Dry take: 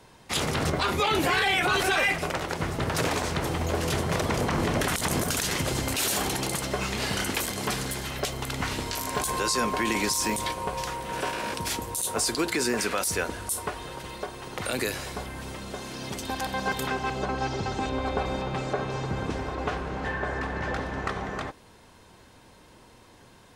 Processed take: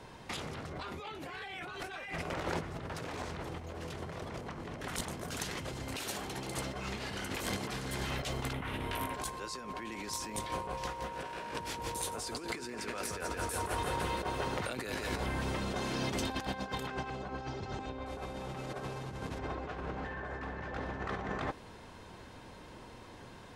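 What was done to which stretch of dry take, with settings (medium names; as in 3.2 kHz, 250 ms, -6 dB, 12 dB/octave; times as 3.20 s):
8.53–9.14 s: high-order bell 5.7 kHz -14 dB 1.1 oct
10.71–15.20 s: bit-crushed delay 170 ms, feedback 55%, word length 9-bit, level -7.5 dB
18.06–19.39 s: one-bit delta coder 64 kbps, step -32.5 dBFS
whole clip: low-pass 3.8 kHz 6 dB/octave; peak limiter -23 dBFS; compressor with a negative ratio -36 dBFS, ratio -0.5; trim -1.5 dB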